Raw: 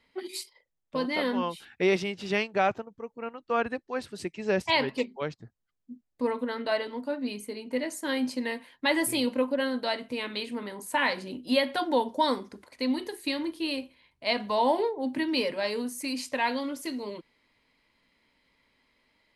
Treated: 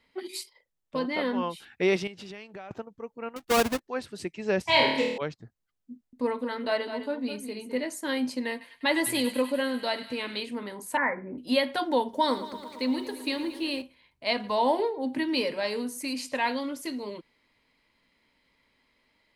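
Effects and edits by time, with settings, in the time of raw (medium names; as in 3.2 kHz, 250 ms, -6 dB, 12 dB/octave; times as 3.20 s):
0.99–1.50 s: treble shelf 5.4 kHz -10 dB
2.07–2.71 s: compression 8:1, threshold -39 dBFS
3.36–3.80 s: square wave that keeps the level
4.64–5.18 s: flutter echo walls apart 4.5 m, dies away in 0.79 s
5.92–7.82 s: delay 208 ms -9.5 dB
8.51–10.40 s: feedback echo behind a high-pass 99 ms, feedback 72%, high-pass 1.4 kHz, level -12 dB
10.97–11.38 s: steep low-pass 2.2 kHz 96 dB/octave
12.02–13.82 s: bit-crushed delay 113 ms, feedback 80%, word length 9-bit, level -14 dB
14.33–16.52 s: delay 107 ms -18.5 dB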